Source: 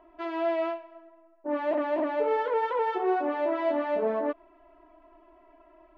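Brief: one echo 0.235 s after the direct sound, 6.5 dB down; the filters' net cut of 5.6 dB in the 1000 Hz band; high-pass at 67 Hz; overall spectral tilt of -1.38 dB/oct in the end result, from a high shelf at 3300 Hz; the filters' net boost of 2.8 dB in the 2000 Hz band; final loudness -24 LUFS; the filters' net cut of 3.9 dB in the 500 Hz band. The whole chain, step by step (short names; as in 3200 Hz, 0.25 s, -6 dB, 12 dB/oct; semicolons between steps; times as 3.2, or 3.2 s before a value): HPF 67 Hz; bell 500 Hz -3 dB; bell 1000 Hz -7.5 dB; bell 2000 Hz +4 dB; high shelf 3300 Hz +7 dB; echo 0.235 s -6.5 dB; gain +7 dB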